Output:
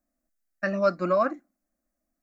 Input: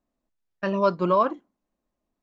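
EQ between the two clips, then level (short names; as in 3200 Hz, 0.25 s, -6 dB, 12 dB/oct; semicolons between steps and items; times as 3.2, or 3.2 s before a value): dynamic EQ 2200 Hz, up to +5 dB, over -39 dBFS, Q 1.2; high shelf 3300 Hz +8 dB; fixed phaser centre 640 Hz, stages 8; 0.0 dB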